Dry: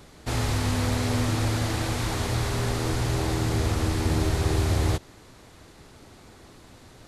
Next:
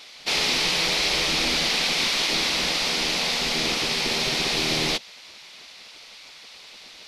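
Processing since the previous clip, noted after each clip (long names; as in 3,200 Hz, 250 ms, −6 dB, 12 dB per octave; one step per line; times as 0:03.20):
gate on every frequency bin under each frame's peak −10 dB weak
flat-topped bell 3,500 Hz +13 dB
level +1.5 dB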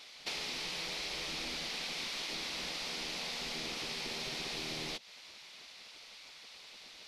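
downward compressor 6 to 1, threshold −29 dBFS, peak gain reduction 9.5 dB
level −8 dB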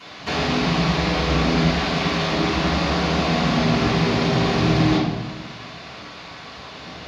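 convolution reverb RT60 1.1 s, pre-delay 3 ms, DRR −14 dB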